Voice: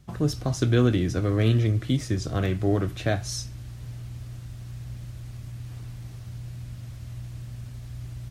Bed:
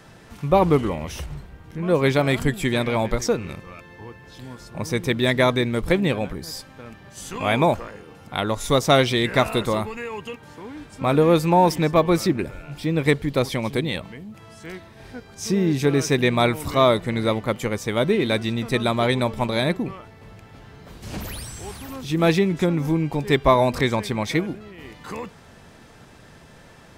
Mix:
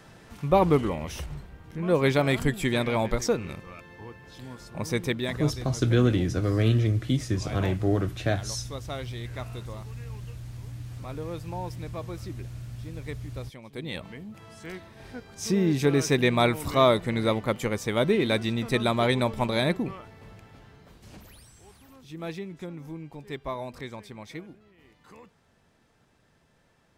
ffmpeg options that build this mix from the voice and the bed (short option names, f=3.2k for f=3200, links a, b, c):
-filter_complex "[0:a]adelay=5200,volume=-1dB[a];[1:a]volume=13.5dB,afade=t=out:st=5.01:d=0.4:silence=0.149624,afade=t=in:st=13.71:d=0.43:silence=0.141254,afade=t=out:st=20.19:d=1.03:silence=0.188365[b];[a][b]amix=inputs=2:normalize=0"